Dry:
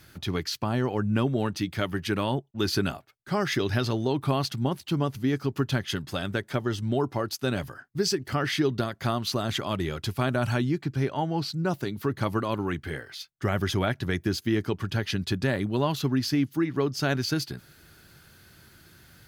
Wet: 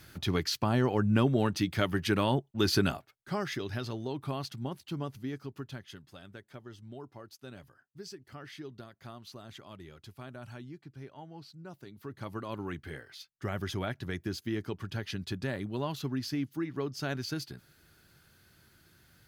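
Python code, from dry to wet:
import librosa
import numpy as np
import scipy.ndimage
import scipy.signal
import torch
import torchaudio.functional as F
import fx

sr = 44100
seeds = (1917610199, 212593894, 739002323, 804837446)

y = fx.gain(x, sr, db=fx.line((2.95, -0.5), (3.6, -10.0), (5.1, -10.0), (6.1, -19.5), (11.72, -19.5), (12.63, -8.5)))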